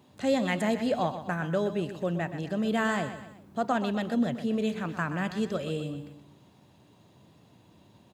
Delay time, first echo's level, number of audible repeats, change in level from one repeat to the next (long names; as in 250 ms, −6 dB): 125 ms, −11.0 dB, 3, −7.0 dB